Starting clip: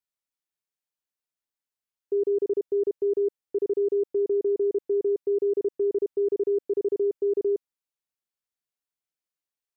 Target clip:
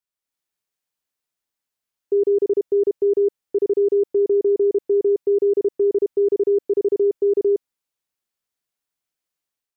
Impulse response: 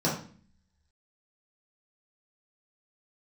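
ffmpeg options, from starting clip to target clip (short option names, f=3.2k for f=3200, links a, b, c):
-af "dynaudnorm=f=100:g=5:m=6.5dB"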